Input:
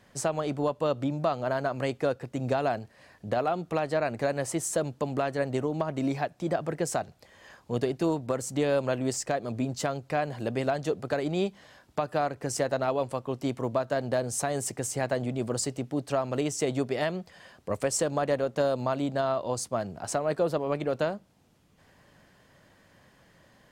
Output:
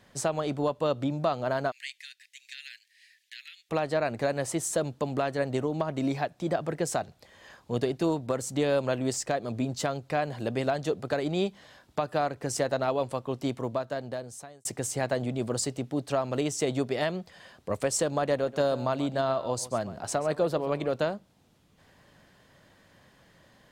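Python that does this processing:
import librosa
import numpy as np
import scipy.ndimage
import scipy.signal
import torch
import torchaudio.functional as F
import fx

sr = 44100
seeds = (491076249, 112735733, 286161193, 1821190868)

y = fx.steep_highpass(x, sr, hz=1800.0, slope=72, at=(1.7, 3.69), fade=0.02)
y = fx.echo_single(y, sr, ms=134, db=-16.0, at=(18.34, 20.89))
y = fx.edit(y, sr, fx.fade_out_span(start_s=13.43, length_s=1.22), tone=tone)
y = fx.peak_eq(y, sr, hz=3700.0, db=3.5, octaves=0.45)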